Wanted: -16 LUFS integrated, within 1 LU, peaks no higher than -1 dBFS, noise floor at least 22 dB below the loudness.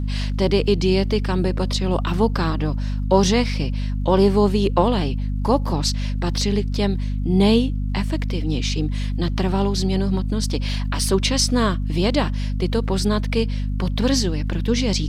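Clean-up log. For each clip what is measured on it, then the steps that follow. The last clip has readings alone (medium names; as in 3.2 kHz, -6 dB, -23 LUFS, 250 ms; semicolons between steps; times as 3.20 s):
tick rate 43 per s; hum 50 Hz; highest harmonic 250 Hz; hum level -21 dBFS; loudness -21.0 LUFS; peak level -3.5 dBFS; loudness target -16.0 LUFS
-> de-click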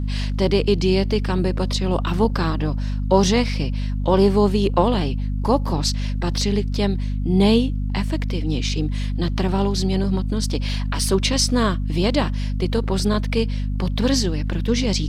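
tick rate 0.73 per s; hum 50 Hz; highest harmonic 250 Hz; hum level -21 dBFS
-> hum notches 50/100/150/200/250 Hz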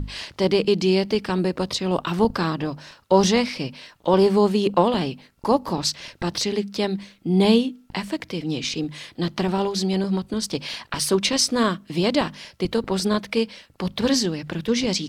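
hum not found; loudness -23.0 LUFS; peak level -4.5 dBFS; loudness target -16.0 LUFS
-> trim +7 dB; peak limiter -1 dBFS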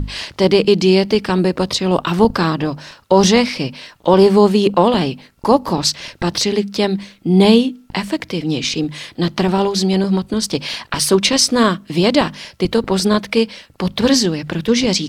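loudness -16.0 LUFS; peak level -1.0 dBFS; noise floor -50 dBFS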